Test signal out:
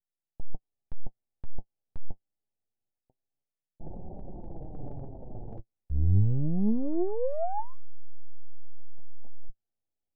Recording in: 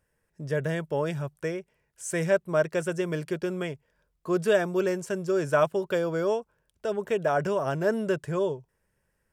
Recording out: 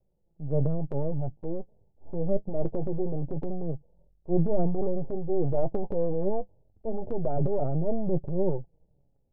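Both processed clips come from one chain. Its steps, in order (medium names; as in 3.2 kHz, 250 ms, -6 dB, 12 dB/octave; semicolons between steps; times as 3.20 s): partial rectifier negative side -12 dB; steep low-pass 860 Hz 96 dB/octave; bass shelf 180 Hz +9.5 dB; transient shaper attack -4 dB, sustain +8 dB; flange 0.24 Hz, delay 5.1 ms, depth 5.4 ms, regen +43%; trim +3 dB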